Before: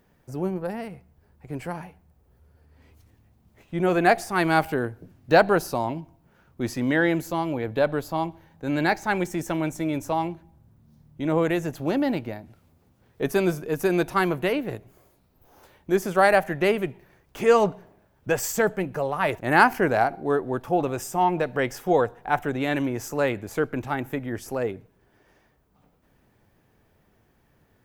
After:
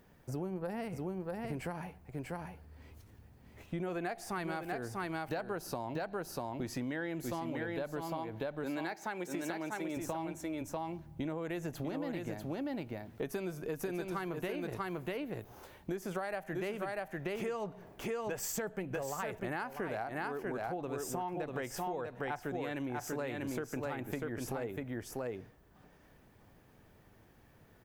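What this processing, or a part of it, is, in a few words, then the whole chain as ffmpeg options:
serial compression, peaks first: -filter_complex "[0:a]asettb=1/sr,asplit=3[link_01][link_02][link_03];[link_01]atrim=end=8.014[link_04];[link_02]atrim=start=8.01:end=9.97,asetpts=PTS-STARTPTS,afade=type=in:duration=0.004:curve=qsin,afade=type=out:start_time=1.956:duration=0.004:curve=qsin,highpass=240[link_05];[link_03]atrim=start=9.966[link_06];[link_04][link_05]acrossfade=duration=0.004:curve1=hsin:curve2=qsin[link_07];[link_07][link_06]acrossfade=duration=0.004:curve1=qsin:curve2=hsin,aecho=1:1:643:0.531,acompressor=threshold=-29dB:ratio=6,acompressor=threshold=-37dB:ratio=2.5"

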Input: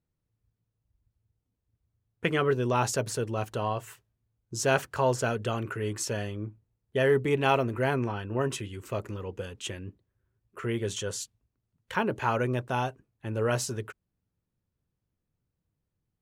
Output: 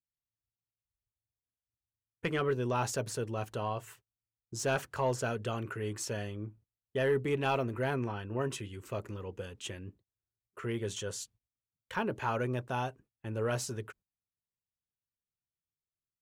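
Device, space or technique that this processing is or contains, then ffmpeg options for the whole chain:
saturation between pre-emphasis and de-emphasis: -af "agate=range=-18dB:threshold=-53dB:ratio=16:detection=peak,highshelf=frequency=3000:gain=11.5,asoftclip=type=tanh:threshold=-14.5dB,highshelf=frequency=3000:gain=-11.5,volume=-4.5dB"

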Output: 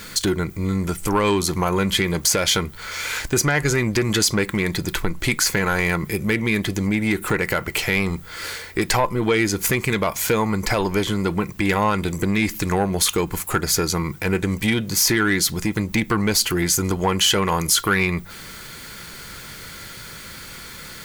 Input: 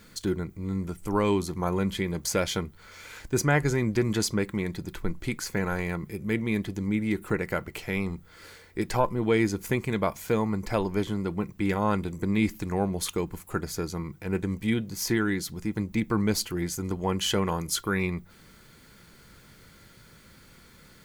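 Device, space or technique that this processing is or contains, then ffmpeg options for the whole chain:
mastering chain: -af "equalizer=frequency=230:width_type=o:width=0.77:gain=-2,acompressor=threshold=-30dB:ratio=2.5,asoftclip=type=tanh:threshold=-23.5dB,tiltshelf=frequency=840:gain=-4,alimiter=level_in=23.5dB:limit=-1dB:release=50:level=0:latency=1,volume=-8dB"

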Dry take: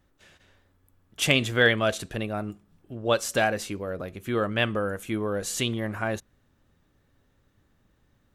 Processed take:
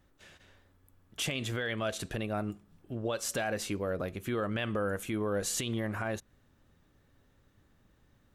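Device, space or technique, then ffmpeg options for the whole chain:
stacked limiters: -af "alimiter=limit=-11dB:level=0:latency=1:release=427,alimiter=limit=-16dB:level=0:latency=1,alimiter=limit=-23dB:level=0:latency=1:release=170"

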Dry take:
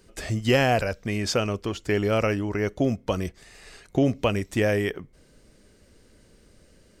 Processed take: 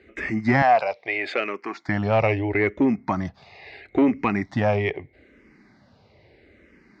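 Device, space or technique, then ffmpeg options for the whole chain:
barber-pole phaser into a guitar amplifier: -filter_complex "[0:a]asplit=2[link_01][link_02];[link_02]afreqshift=-0.77[link_03];[link_01][link_03]amix=inputs=2:normalize=1,asoftclip=type=tanh:threshold=-18.5dB,highpass=100,equalizer=frequency=180:width_type=q:width=4:gain=-4,equalizer=frequency=490:width_type=q:width=4:gain=-6,equalizer=frequency=790:width_type=q:width=4:gain=6,equalizer=frequency=1400:width_type=q:width=4:gain=-3,equalizer=frequency=2100:width_type=q:width=4:gain=8,equalizer=frequency=3100:width_type=q:width=4:gain=-9,lowpass=frequency=3800:width=0.5412,lowpass=frequency=3800:width=1.3066,asettb=1/sr,asplit=3[link_04][link_05][link_06];[link_04]atrim=end=0.624[link_07];[link_05]atrim=start=0.62:end=1.89,asetpts=PTS-STARTPTS,afade=type=in:duration=0.004:curve=qsin,afade=type=out:start_time=1.266:duration=0.004:curve=qsin,highpass=470[link_08];[link_06]atrim=start=1.886[link_09];[link_07][link_08]acrossfade=duration=0.004:curve1=hsin:curve2=qsin[link_10];[link_10][link_09]acrossfade=duration=0.004:curve1=qsin:curve2=hsin,volume=8dB"

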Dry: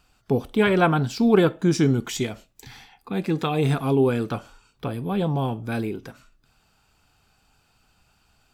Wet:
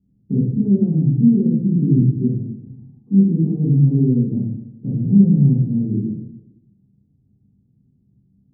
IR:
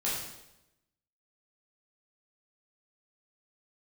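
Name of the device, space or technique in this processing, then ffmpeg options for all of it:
club heard from the street: -filter_complex "[0:a]alimiter=limit=-15.5dB:level=0:latency=1:release=396,lowpass=frequency=240:width=0.5412,lowpass=frequency=240:width=1.3066[link_01];[1:a]atrim=start_sample=2205[link_02];[link_01][link_02]afir=irnorm=-1:irlink=0,highpass=130,volume=7.5dB"

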